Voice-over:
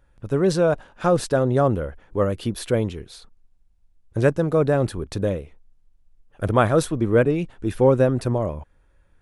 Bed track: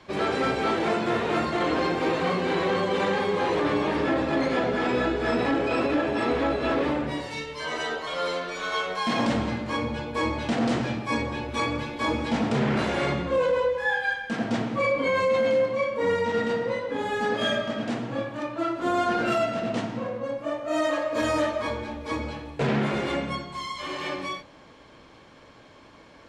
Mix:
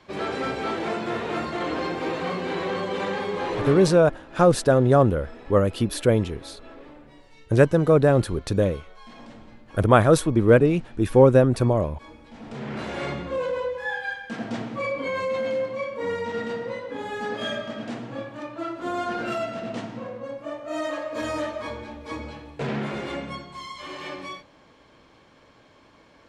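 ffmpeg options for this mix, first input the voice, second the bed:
-filter_complex "[0:a]adelay=3350,volume=2dB[a];[1:a]volume=13.5dB,afade=t=out:st=3.69:d=0.35:silence=0.133352,afade=t=in:st=12.34:d=0.7:silence=0.149624[b];[a][b]amix=inputs=2:normalize=0"

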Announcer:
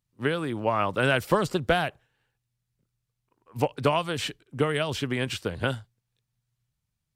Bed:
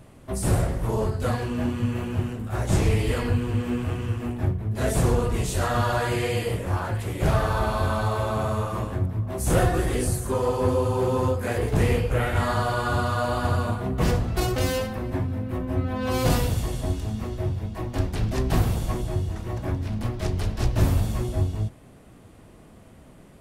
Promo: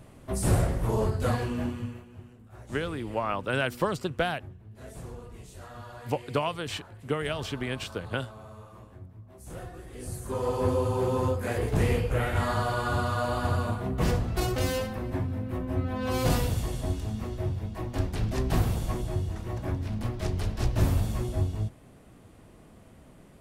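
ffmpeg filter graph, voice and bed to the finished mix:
-filter_complex "[0:a]adelay=2500,volume=-4.5dB[a];[1:a]volume=15.5dB,afade=t=out:st=1.41:d=0.63:silence=0.112202,afade=t=in:st=9.92:d=0.66:silence=0.141254[b];[a][b]amix=inputs=2:normalize=0"

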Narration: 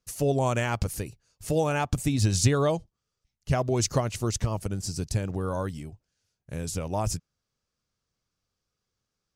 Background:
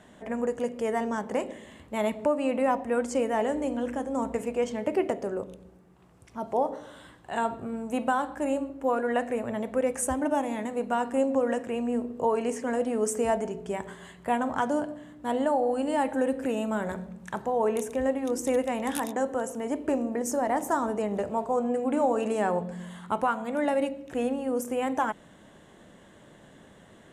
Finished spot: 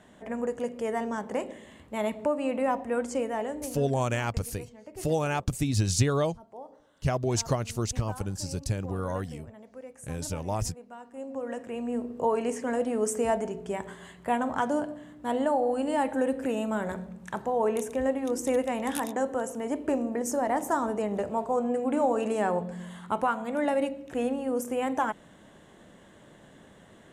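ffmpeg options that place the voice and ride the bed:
-filter_complex "[0:a]adelay=3550,volume=-2dB[a];[1:a]volume=15.5dB,afade=t=out:st=3.09:d=0.94:silence=0.158489,afade=t=in:st=11.12:d=1.09:silence=0.133352[b];[a][b]amix=inputs=2:normalize=0"

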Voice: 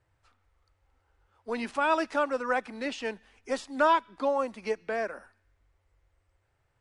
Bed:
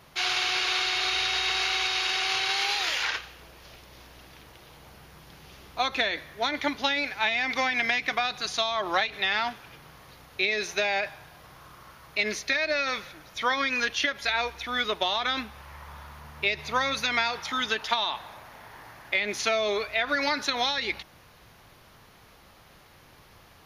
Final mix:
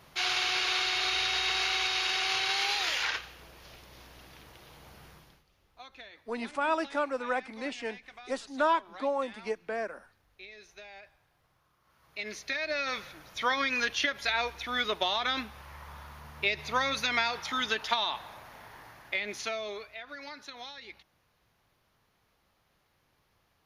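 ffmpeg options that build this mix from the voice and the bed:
-filter_complex "[0:a]adelay=4800,volume=-3dB[a];[1:a]volume=17.5dB,afade=t=out:st=5.08:d=0.36:silence=0.1,afade=t=in:st=11.82:d=1.33:silence=0.1,afade=t=out:st=18.6:d=1.41:silence=0.177828[b];[a][b]amix=inputs=2:normalize=0"

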